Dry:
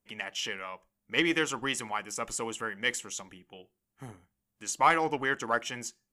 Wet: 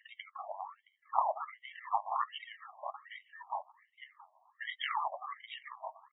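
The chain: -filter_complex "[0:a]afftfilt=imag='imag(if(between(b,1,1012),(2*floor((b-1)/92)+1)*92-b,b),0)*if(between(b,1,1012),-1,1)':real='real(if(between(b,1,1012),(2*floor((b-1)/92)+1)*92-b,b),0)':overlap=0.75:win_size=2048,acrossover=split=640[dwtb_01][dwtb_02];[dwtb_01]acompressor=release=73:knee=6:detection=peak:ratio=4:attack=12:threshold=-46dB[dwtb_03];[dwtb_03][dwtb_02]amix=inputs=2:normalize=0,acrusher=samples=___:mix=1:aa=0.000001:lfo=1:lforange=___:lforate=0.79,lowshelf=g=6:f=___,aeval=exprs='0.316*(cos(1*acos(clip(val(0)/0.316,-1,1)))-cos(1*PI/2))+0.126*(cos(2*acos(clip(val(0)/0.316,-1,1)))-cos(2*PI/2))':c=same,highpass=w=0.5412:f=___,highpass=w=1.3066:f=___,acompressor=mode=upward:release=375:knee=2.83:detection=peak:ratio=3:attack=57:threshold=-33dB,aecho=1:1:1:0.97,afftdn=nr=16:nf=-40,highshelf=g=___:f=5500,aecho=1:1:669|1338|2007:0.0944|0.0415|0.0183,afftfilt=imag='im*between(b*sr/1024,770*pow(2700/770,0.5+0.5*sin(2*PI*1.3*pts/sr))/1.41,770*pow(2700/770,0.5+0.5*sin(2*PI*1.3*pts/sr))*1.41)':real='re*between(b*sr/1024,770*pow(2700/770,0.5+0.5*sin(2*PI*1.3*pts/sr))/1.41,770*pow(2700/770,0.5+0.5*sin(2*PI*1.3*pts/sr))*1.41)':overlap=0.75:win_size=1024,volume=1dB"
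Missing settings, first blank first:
33, 33, 210, 150, 150, -4.5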